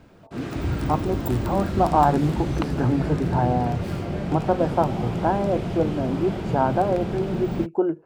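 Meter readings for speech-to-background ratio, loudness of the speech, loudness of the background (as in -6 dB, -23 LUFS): 3.5 dB, -24.5 LUFS, -28.0 LUFS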